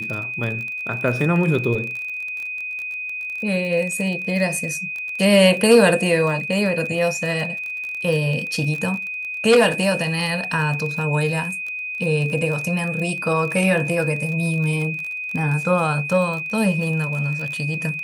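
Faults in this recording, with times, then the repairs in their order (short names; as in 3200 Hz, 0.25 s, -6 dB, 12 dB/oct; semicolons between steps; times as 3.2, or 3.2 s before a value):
crackle 32/s -26 dBFS
tone 2500 Hz -26 dBFS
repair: de-click; notch 2500 Hz, Q 30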